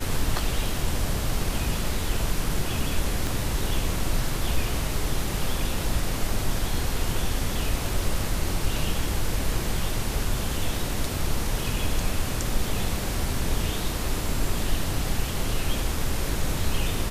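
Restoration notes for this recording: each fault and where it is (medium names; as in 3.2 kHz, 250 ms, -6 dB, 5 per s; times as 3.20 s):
3.27 s: pop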